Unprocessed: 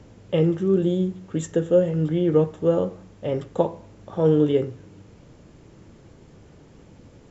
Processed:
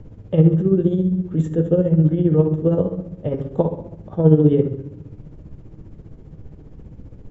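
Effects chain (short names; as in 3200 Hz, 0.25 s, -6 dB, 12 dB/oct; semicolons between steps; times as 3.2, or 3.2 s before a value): tilt -3.5 dB/oct; shoebox room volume 230 m³, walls mixed, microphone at 0.53 m; tremolo 15 Hz, depth 60%; gain -1 dB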